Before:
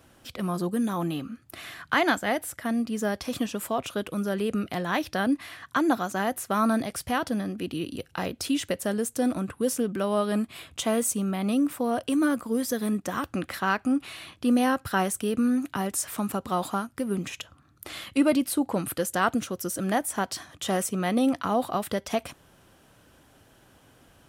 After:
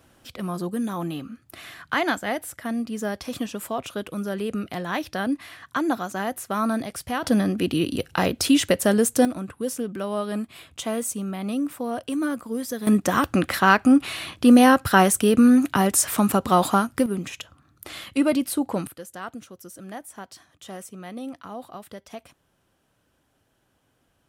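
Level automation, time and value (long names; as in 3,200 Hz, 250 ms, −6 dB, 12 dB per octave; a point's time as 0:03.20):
−0.5 dB
from 0:07.24 +8.5 dB
from 0:09.25 −2 dB
from 0:12.87 +9 dB
from 0:17.06 +1 dB
from 0:18.87 −11.5 dB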